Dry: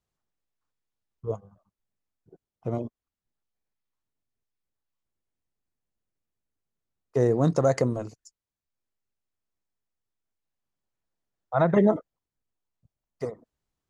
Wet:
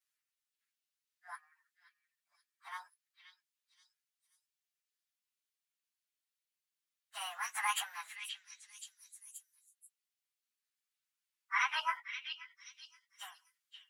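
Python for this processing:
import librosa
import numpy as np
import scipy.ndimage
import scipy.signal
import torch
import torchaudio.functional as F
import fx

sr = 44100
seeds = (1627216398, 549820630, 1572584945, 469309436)

y = fx.pitch_bins(x, sr, semitones=7.5)
y = scipy.signal.sosfilt(scipy.signal.bessel(8, 2100.0, 'highpass', norm='mag', fs=sr, output='sos'), y)
y = fx.echo_stepped(y, sr, ms=527, hz=3400.0, octaves=0.7, feedback_pct=70, wet_db=-3.5)
y = y * 10.0 ** (7.5 / 20.0)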